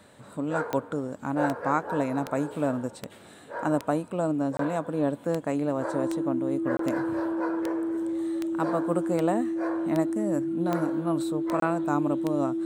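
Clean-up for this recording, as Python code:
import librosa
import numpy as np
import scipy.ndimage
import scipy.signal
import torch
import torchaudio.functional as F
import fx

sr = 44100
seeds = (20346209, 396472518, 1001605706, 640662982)

y = fx.fix_declick_ar(x, sr, threshold=10.0)
y = fx.notch(y, sr, hz=330.0, q=30.0)
y = fx.fix_interpolate(y, sr, at_s=(4.57, 6.77, 11.6), length_ms=23.0)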